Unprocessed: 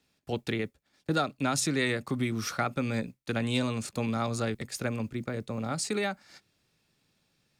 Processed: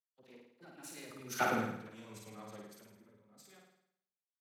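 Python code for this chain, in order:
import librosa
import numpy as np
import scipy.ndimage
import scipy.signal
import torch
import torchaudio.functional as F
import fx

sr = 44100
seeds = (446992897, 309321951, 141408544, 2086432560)

p1 = fx.diode_clip(x, sr, knee_db=-29.0)
p2 = fx.doppler_pass(p1, sr, speed_mps=27, closest_m=2.1, pass_at_s=2.47)
p3 = scipy.signal.sosfilt(scipy.signal.butter(2, 170.0, 'highpass', fs=sr, output='sos'), p2)
p4 = fx.peak_eq(p3, sr, hz=12000.0, db=12.0, octaves=0.23)
p5 = fx.over_compress(p4, sr, threshold_db=-59.0, ratio=-1.0)
p6 = p4 + F.gain(torch.from_numpy(p5), 3.0).numpy()
p7 = fx.dispersion(p6, sr, late='lows', ms=53.0, hz=630.0)
p8 = fx.stretch_vocoder(p7, sr, factor=0.58)
p9 = p8 + fx.room_flutter(p8, sr, wall_m=9.2, rt60_s=1.2, dry=0)
p10 = fx.band_widen(p9, sr, depth_pct=100)
y = F.gain(torch.from_numpy(p10), -5.0).numpy()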